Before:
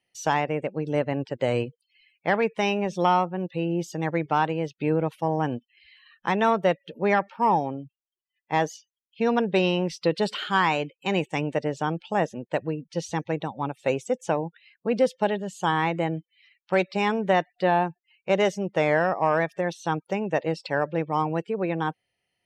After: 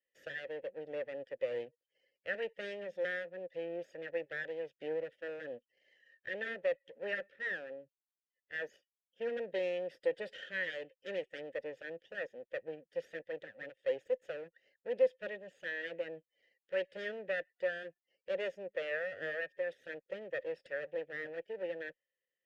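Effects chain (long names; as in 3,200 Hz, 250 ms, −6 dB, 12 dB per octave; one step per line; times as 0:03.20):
lower of the sound and its delayed copy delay 0.58 ms
formant filter e
level −1 dB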